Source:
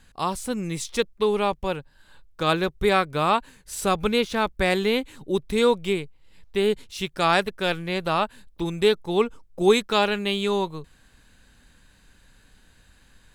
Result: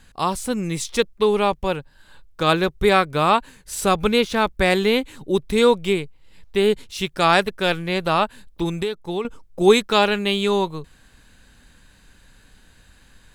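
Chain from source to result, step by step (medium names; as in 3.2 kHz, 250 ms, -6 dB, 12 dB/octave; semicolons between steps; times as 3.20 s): 8.76–9.25 s: compression 4:1, threshold -28 dBFS, peak gain reduction 12 dB; trim +4 dB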